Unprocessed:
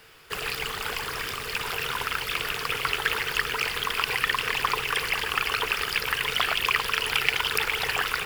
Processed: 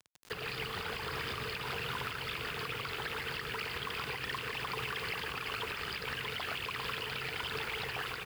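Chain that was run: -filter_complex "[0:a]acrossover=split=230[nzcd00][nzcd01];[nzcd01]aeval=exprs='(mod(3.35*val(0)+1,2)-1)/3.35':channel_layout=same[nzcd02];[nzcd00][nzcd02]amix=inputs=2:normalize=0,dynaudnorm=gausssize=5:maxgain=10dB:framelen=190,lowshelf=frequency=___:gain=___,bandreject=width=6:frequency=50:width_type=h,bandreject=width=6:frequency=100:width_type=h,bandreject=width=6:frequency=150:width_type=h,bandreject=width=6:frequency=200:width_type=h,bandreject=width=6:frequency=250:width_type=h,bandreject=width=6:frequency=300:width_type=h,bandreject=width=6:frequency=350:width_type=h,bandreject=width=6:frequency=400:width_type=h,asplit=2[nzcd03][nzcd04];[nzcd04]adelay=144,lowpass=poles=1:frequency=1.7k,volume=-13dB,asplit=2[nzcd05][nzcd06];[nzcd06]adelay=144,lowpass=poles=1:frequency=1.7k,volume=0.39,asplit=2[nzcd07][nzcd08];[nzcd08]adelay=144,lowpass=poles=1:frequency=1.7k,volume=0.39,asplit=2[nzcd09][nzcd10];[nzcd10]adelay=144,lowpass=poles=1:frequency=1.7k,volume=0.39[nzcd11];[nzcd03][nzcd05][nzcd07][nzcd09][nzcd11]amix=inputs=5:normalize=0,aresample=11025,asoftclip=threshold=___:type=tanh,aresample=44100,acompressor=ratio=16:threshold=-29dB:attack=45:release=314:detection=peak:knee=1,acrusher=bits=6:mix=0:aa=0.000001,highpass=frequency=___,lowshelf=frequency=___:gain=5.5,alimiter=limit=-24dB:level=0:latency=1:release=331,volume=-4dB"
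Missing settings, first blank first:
340, 7, -13.5dB, 92, 150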